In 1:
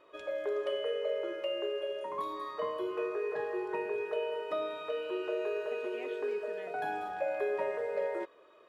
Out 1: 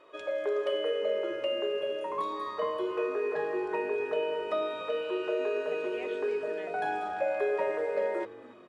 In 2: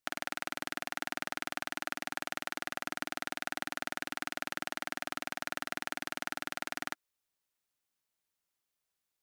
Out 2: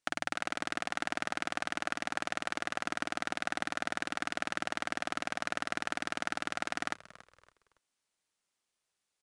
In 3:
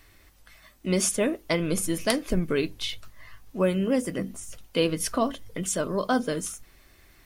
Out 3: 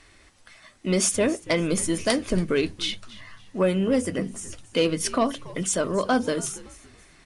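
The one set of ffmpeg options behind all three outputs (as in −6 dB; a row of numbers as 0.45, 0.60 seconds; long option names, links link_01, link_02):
-filter_complex "[0:a]lowshelf=frequency=120:gain=-5,bandreject=frequency=50:width_type=h:width=6,bandreject=frequency=100:width_type=h:width=6,bandreject=frequency=150:width_type=h:width=6,asoftclip=type=tanh:threshold=-16dB,asplit=4[link_01][link_02][link_03][link_04];[link_02]adelay=281,afreqshift=-100,volume=-19dB[link_05];[link_03]adelay=562,afreqshift=-200,volume=-28.6dB[link_06];[link_04]adelay=843,afreqshift=-300,volume=-38.3dB[link_07];[link_01][link_05][link_06][link_07]amix=inputs=4:normalize=0,aresample=22050,aresample=44100,volume=4dB"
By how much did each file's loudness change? +3.5, +2.5, +2.5 LU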